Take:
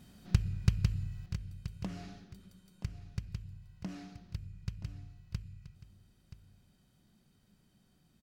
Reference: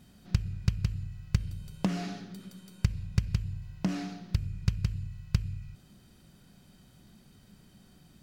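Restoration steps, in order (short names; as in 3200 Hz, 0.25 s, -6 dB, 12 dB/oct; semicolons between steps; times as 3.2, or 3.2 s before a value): clip repair -12.5 dBFS; inverse comb 0.977 s -14 dB; gain correction +11.5 dB, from 1.26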